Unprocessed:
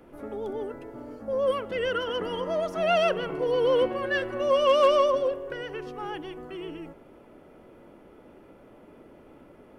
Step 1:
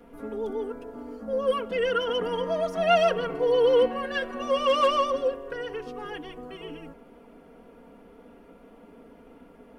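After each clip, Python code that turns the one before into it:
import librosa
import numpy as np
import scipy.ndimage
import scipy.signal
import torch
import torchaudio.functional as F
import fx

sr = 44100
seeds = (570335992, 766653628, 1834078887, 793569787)

y = x + 0.99 * np.pad(x, (int(4.3 * sr / 1000.0), 0))[:len(x)]
y = F.gain(torch.from_numpy(y), -2.0).numpy()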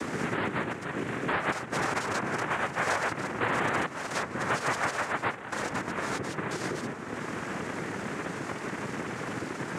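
y = fx.noise_vocoder(x, sr, seeds[0], bands=3)
y = fx.band_squash(y, sr, depth_pct=100)
y = F.gain(torch.from_numpy(y), -4.5).numpy()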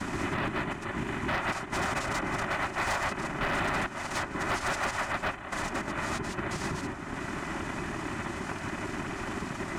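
y = fx.band_invert(x, sr, width_hz=500)
y = np.clip(y, -10.0 ** (-24.5 / 20.0), 10.0 ** (-24.5 / 20.0))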